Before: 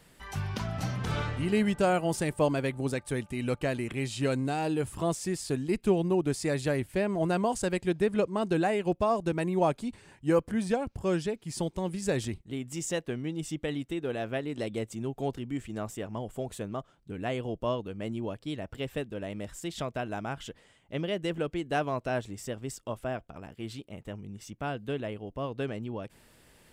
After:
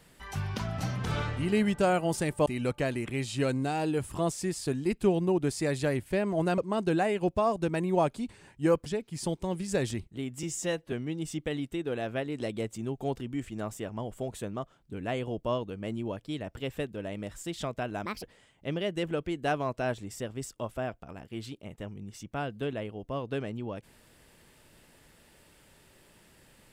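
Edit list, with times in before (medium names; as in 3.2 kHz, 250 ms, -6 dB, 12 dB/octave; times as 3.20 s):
2.46–3.29 s: delete
7.41–8.22 s: delete
10.50–11.20 s: delete
12.77–13.10 s: stretch 1.5×
20.23–20.50 s: speed 155%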